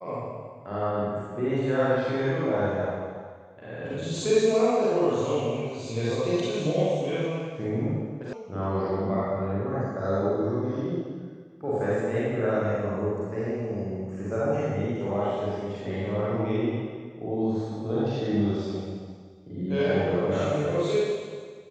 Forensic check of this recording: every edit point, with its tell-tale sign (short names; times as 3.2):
8.33 sound cut off